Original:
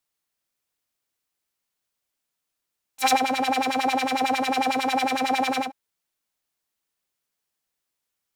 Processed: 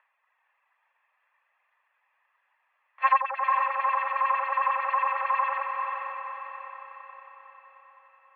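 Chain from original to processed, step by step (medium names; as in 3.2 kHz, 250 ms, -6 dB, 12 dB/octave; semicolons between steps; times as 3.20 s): comb filter that takes the minimum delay 1.3 ms; reverb removal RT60 1.5 s; upward compressor, threshold -43 dBFS; mistuned SSB +280 Hz 320–2100 Hz; on a send: echo that smears into a reverb 471 ms, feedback 53%, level -4.5 dB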